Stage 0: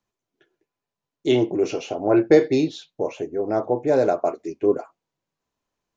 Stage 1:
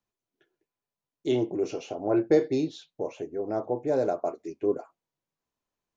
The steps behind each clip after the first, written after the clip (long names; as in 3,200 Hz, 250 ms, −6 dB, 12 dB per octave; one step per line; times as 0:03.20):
dynamic equaliser 2,300 Hz, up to −5 dB, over −37 dBFS, Q 0.8
level −6.5 dB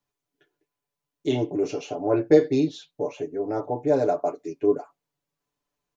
comb filter 6.9 ms, depth 70%
level +2 dB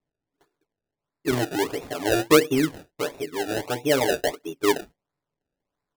sample-and-hold swept by an LFO 28×, swing 100% 1.5 Hz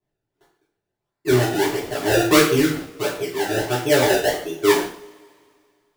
coupled-rooms reverb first 0.47 s, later 2.3 s, from −26 dB, DRR −8 dB
level −3.5 dB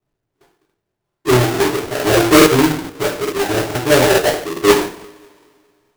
each half-wave held at its own peak
regular buffer underruns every 0.43 s, samples 2,048, repeat, from 0:00.65